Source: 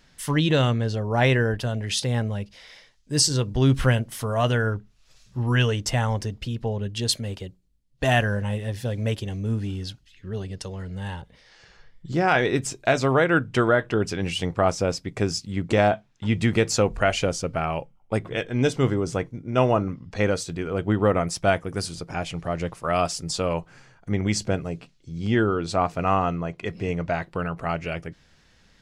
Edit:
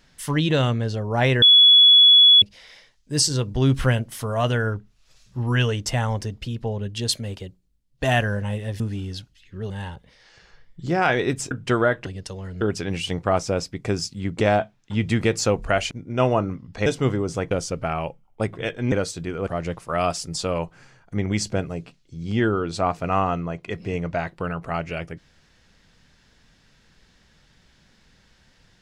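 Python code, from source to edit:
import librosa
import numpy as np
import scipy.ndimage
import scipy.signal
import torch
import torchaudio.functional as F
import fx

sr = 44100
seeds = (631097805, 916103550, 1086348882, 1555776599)

y = fx.edit(x, sr, fx.bleep(start_s=1.42, length_s=1.0, hz=3390.0, db=-8.5),
    fx.cut(start_s=8.8, length_s=0.71),
    fx.move(start_s=10.41, length_s=0.55, to_s=13.93),
    fx.cut(start_s=12.77, length_s=0.61),
    fx.swap(start_s=17.23, length_s=1.41, other_s=19.29, other_length_s=0.95),
    fx.cut(start_s=20.79, length_s=1.63), tone=tone)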